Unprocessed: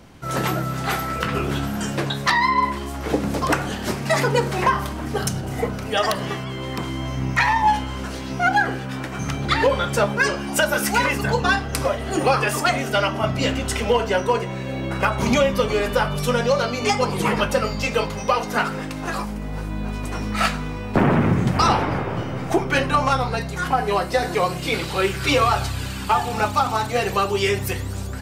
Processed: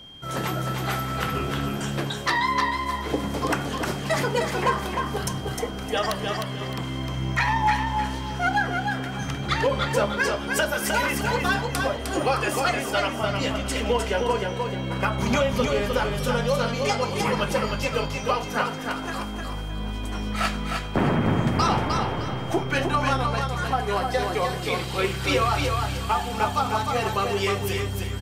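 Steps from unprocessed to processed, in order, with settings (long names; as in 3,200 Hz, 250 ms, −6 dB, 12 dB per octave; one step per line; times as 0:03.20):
repeating echo 307 ms, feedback 29%, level −4.5 dB
steady tone 3,200 Hz −38 dBFS
level −5 dB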